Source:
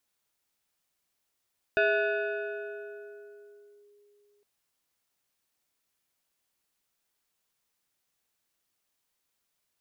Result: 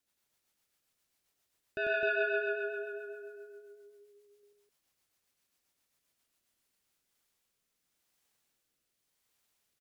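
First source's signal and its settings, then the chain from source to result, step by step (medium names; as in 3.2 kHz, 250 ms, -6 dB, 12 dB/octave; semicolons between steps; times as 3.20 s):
FM tone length 2.66 s, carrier 411 Hz, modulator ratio 2.59, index 1.6, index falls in 2.11 s linear, decay 3.47 s, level -20 dB
peak limiter -27 dBFS; rotary cabinet horn 7.5 Hz, later 0.85 Hz, at 6.39 s; on a send: loudspeakers at several distances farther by 33 m -1 dB, 89 m -3 dB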